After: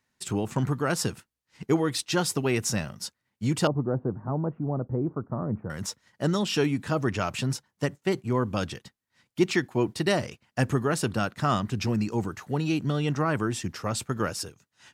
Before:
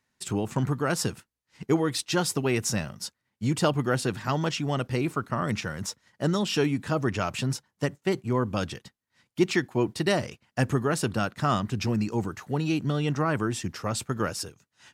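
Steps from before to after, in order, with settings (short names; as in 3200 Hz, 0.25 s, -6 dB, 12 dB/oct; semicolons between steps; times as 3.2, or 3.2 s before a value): 3.67–5.7 Bessel low-pass 680 Hz, order 6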